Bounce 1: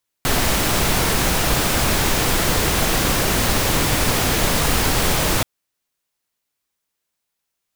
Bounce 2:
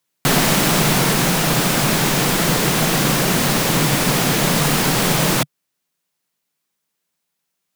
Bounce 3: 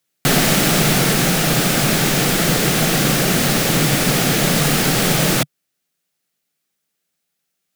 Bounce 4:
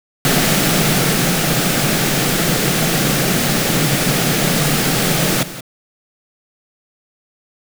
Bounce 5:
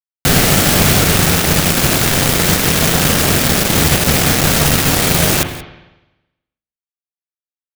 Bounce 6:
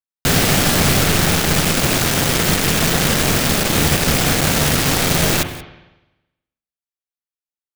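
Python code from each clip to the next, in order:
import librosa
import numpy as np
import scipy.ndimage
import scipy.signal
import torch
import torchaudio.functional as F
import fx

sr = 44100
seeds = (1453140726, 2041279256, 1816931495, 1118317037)

y1 = fx.low_shelf_res(x, sr, hz=110.0, db=-10.5, q=3.0)
y1 = fx.rider(y1, sr, range_db=10, speed_s=2.0)
y1 = y1 * 10.0 ** (1.5 / 20.0)
y2 = fx.peak_eq(y1, sr, hz=990.0, db=-11.0, octaves=0.24)
y2 = y2 * 10.0 ** (1.0 / 20.0)
y3 = y2 + 10.0 ** (-14.0 / 20.0) * np.pad(y2, (int(176 * sr / 1000.0), 0))[:len(y2)]
y3 = fx.quant_dither(y3, sr, seeds[0], bits=6, dither='none')
y4 = fx.octave_divider(y3, sr, octaves=1, level_db=-2.0)
y4 = fx.quant_companded(y4, sr, bits=2)
y4 = fx.rev_spring(y4, sr, rt60_s=1.0, pass_ms=(41, 52), chirp_ms=65, drr_db=7.0)
y4 = y4 * 10.0 ** (-5.5 / 20.0)
y5 = fx.tracing_dist(y4, sr, depth_ms=0.055)
y5 = y5 * 10.0 ** (-3.5 / 20.0)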